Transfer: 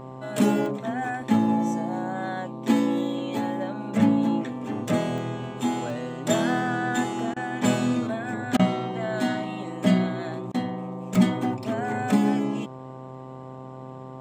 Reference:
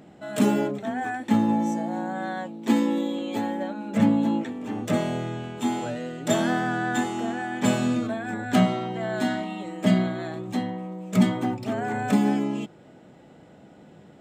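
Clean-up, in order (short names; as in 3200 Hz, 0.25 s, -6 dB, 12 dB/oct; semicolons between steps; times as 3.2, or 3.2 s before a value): de-hum 130.3 Hz, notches 9; interpolate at 0.66/1.22/5.18/5.9/11.15, 1.1 ms; interpolate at 7.34/8.57/10.52, 22 ms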